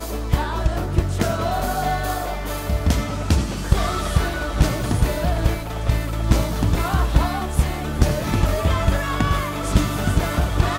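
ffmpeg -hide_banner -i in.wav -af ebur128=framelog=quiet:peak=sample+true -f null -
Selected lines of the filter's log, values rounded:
Integrated loudness:
  I:         -22.0 LUFS
  Threshold: -32.0 LUFS
Loudness range:
  LRA:         1.6 LU
  Threshold: -42.0 LUFS
  LRA low:   -22.9 LUFS
  LRA high:  -21.3 LUFS
Sample peak:
  Peak:       -3.0 dBFS
True peak:
  Peak:       -3.0 dBFS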